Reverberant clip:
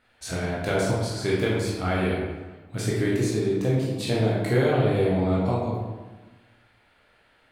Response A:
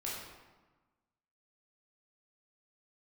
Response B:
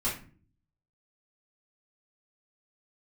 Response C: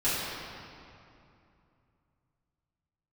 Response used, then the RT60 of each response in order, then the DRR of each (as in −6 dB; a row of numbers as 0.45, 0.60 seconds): A; 1.3, 0.40, 2.7 seconds; −6.0, −9.5, −13.5 decibels